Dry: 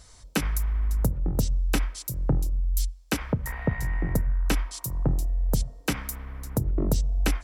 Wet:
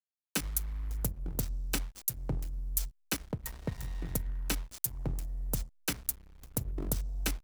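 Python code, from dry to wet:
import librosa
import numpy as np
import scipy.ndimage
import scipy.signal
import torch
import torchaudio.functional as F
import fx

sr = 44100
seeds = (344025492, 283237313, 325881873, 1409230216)

y = fx.backlash(x, sr, play_db=-27.0)
y = scipy.signal.lfilter([1.0, -0.8], [1.0], y)
y = F.gain(torch.from_numpy(y), 4.0).numpy()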